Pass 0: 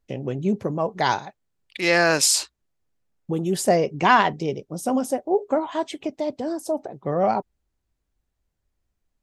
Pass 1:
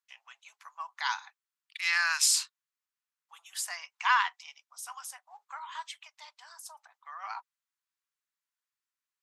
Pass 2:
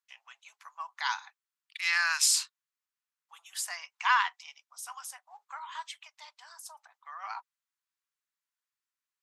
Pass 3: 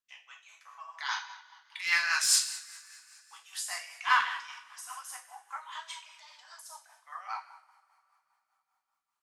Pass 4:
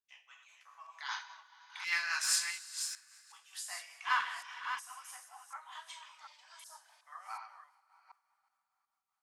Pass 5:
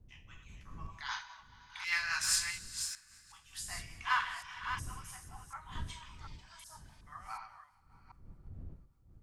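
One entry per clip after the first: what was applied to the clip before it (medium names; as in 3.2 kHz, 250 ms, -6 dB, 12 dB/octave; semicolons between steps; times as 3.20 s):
steep high-pass 1 kHz 48 dB/octave; trim -5.5 dB
no audible change
overload inside the chain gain 17 dB; two-slope reverb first 0.67 s, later 3.4 s, from -21 dB, DRR 0 dB; rotary cabinet horn 5 Hz
chunks repeated in reverse 369 ms, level -7.5 dB; trim -6.5 dB
wind noise 87 Hz -51 dBFS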